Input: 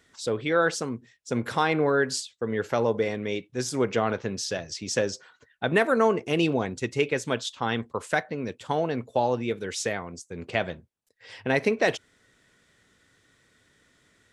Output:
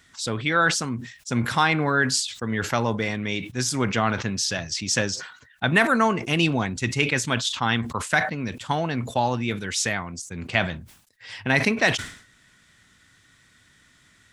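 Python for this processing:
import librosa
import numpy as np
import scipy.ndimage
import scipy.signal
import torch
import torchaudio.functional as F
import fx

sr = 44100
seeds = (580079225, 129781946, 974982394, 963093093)

y = fx.peak_eq(x, sr, hz=460.0, db=-13.0, octaves=1.1)
y = fx.sustainer(y, sr, db_per_s=100.0)
y = y * librosa.db_to_amplitude(7.0)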